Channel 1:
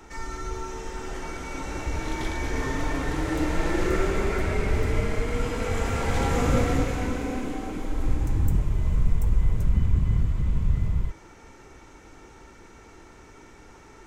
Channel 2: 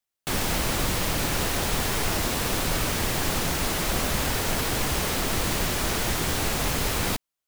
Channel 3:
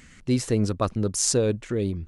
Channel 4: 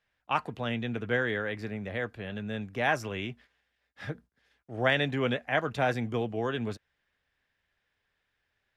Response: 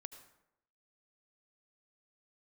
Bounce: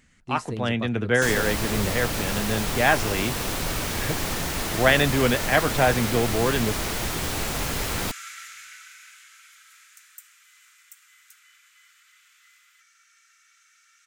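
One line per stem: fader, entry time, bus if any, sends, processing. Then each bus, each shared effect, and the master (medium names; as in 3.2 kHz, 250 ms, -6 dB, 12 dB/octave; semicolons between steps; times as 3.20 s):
-8.0 dB, 1.70 s, no send, steep high-pass 1.3 kHz 72 dB/octave; treble shelf 3.6 kHz +9 dB
-2.0 dB, 0.95 s, no send, none
-10.5 dB, 0.00 s, no send, none
+0.5 dB, 0.00 s, no send, level rider gain up to 7 dB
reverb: none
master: none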